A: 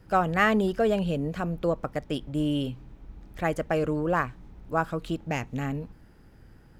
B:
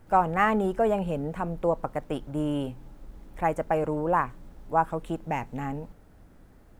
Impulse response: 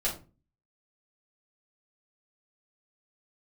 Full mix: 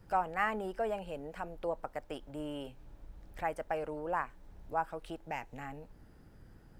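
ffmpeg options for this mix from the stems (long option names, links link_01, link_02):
-filter_complex "[0:a]equalizer=frequency=2300:width=1.5:gain=-3,acompressor=threshold=-38dB:ratio=2.5,volume=-5dB[link_01];[1:a]volume=-1,volume=-10dB[link_02];[link_01][link_02]amix=inputs=2:normalize=0"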